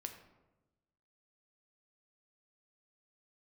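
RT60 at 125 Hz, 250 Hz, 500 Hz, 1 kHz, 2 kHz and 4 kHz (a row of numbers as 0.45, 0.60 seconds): 1.4, 1.3, 1.2, 1.0, 0.75, 0.55 seconds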